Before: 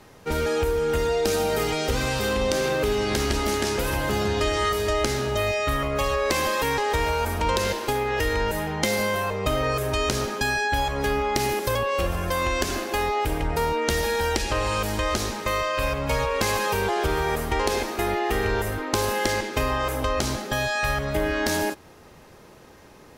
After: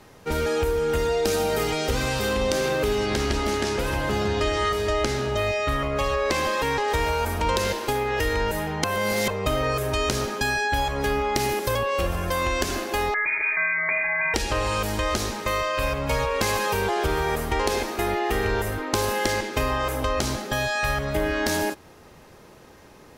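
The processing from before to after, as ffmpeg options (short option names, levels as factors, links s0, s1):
-filter_complex "[0:a]asettb=1/sr,asplit=3[s0][s1][s2];[s0]atrim=end=3.064[s3];[s1]atrim=start=3.06:end=6.88,asetpts=PTS-STARTPTS,afade=t=in:d=0.004:c=qsin,afade=t=out:st=3.816:d=0.004:c=qsin,highshelf=f=10000:g=-12[s4];[s2]atrim=start=6.876[s5];[s3][s4]acrossfade=d=0.004:c1=hsin:c2=qsin[s6];[s6][s5]acrossfade=d=0.004:c1=qsin:c2=hsin,asettb=1/sr,asplit=3[s7][s8][s9];[s7]atrim=end=13.144[s10];[s8]atrim=start=13.14:end=14.34,asetpts=PTS-STARTPTS,afade=t=in:d=0.004:c=qsin,afade=t=out:st=1.196:d=0.004:c=qsin,lowpass=f=2100:t=q:w=0.5098,lowpass=f=2100:t=q:w=0.6013,lowpass=f=2100:t=q:w=0.9,lowpass=f=2100:t=q:w=2.563,afreqshift=-2500[s11];[s9]atrim=start=14.336[s12];[s10][s11]acrossfade=d=0.004:c1=hsin:c2=qsin[s13];[s13][s12]acrossfade=d=0.004:c1=qsin:c2=hsin,asplit=3[s14][s15][s16];[s14]atrim=end=8.842[s17];[s15]atrim=start=8.838:end=9.282,asetpts=PTS-STARTPTS,areverse[s18];[s16]atrim=start=9.278[s19];[s17][s18]acrossfade=d=0.004:c1=hsin:c2=hsin[s20];[s20][s19]acrossfade=d=0.004:c1=hsin:c2=hsin"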